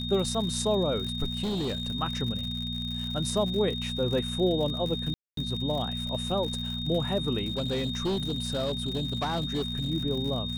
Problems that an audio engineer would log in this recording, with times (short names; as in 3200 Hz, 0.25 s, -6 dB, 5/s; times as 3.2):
crackle 99/s -34 dBFS
hum 60 Hz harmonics 4 -35 dBFS
tone 3700 Hz -34 dBFS
1.43–1.85 clipped -26.5 dBFS
5.14–5.37 gap 0.233 s
7.45–9.91 clipped -24.5 dBFS